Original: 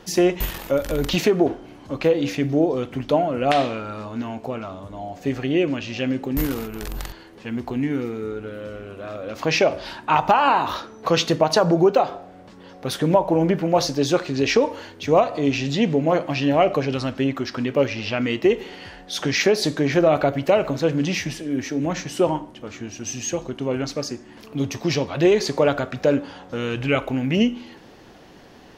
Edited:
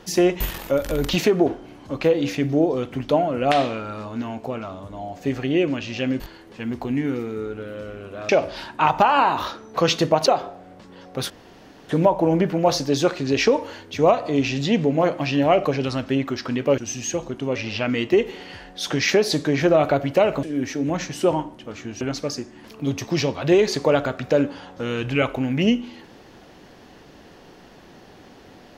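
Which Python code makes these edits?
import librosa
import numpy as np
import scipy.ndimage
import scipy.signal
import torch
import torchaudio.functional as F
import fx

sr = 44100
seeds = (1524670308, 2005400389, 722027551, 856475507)

y = fx.edit(x, sr, fx.cut(start_s=6.2, length_s=0.86),
    fx.cut(start_s=9.15, length_s=0.43),
    fx.cut(start_s=11.55, length_s=0.39),
    fx.insert_room_tone(at_s=12.98, length_s=0.59),
    fx.cut(start_s=20.75, length_s=0.64),
    fx.move(start_s=22.97, length_s=0.77, to_s=17.87), tone=tone)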